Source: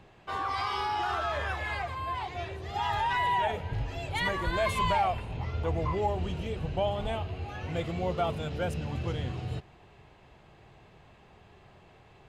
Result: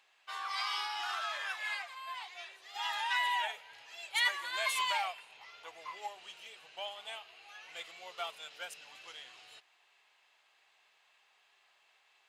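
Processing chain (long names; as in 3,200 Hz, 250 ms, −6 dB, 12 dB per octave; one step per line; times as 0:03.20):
high-pass filter 730 Hz 12 dB per octave
tilt shelving filter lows −9.5 dB, about 1,200 Hz
expander for the loud parts 1.5 to 1, over −41 dBFS
level −2 dB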